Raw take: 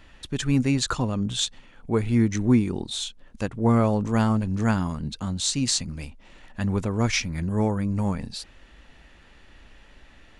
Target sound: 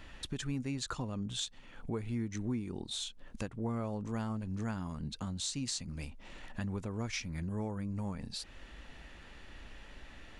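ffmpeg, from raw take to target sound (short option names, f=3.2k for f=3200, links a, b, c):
-af "acompressor=threshold=-39dB:ratio=3"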